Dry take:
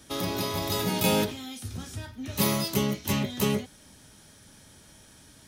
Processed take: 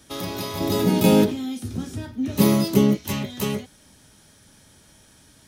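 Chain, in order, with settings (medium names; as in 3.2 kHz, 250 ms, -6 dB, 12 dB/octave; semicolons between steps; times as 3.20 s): 0.60–2.97 s: peaking EQ 270 Hz +12.5 dB 2.1 oct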